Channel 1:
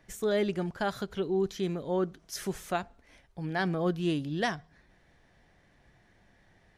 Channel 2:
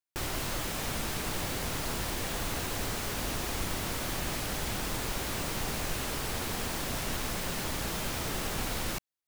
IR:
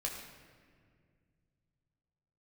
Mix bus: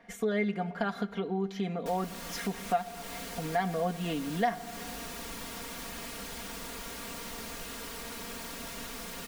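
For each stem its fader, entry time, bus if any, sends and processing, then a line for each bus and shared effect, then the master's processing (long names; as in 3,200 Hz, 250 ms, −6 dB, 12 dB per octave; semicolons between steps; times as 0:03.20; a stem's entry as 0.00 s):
+3.0 dB, 0.00 s, send −13.5 dB, bass and treble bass −8 dB, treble −11 dB; hollow resonant body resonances 200/720/2,100 Hz, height 9 dB
−8.0 dB, 1.70 s, no send, notch filter 760 Hz, Q 12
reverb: on, RT60 2.0 s, pre-delay 8 ms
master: low-shelf EQ 100 Hz −9 dB; comb filter 4.3 ms, depth 78%; downward compressor 2 to 1, threshold −33 dBFS, peak gain reduction 11.5 dB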